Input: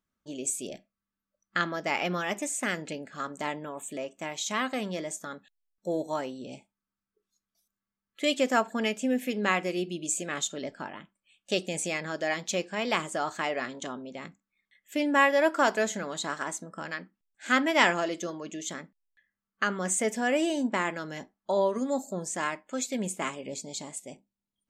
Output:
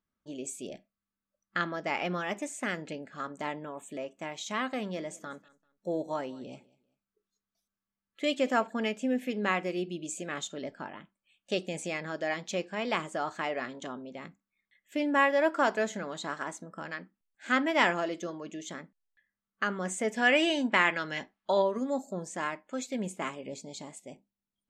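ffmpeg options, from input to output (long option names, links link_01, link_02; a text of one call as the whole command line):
ffmpeg -i in.wav -filter_complex "[0:a]asettb=1/sr,asplit=3[link_01][link_02][link_03];[link_01]atrim=end=4.764[link_04];[link_02]atrim=start=4.76:end=8.67,asetpts=PTS-STARTPTS,afade=type=in:duration=0.004:curve=qsin,afade=type=out:start_time=3.906:duration=0.004:curve=qsin,aecho=1:1:195|390:0.075|0.0202,atrim=end_sample=172431[link_05];[link_03]atrim=start=8.666[link_06];[link_04][link_05]acrossfade=duration=0.004:curve1=hsin:curve2=qsin[link_07];[link_07][link_06]acrossfade=duration=0.004:curve1=qsin:curve2=hsin,asplit=3[link_08][link_09][link_10];[link_08]afade=type=out:start_time=20.16:duration=0.02[link_11];[link_09]equalizer=frequency=2700:width_type=o:width=2.4:gain=12.5,afade=type=in:start_time=20.16:duration=0.02,afade=type=out:start_time=21.61:duration=0.02[link_12];[link_10]afade=type=in:start_time=21.61:duration=0.02[link_13];[link_11][link_12][link_13]amix=inputs=3:normalize=0,lowpass=frequency=3400:poles=1,volume=-2dB" out.wav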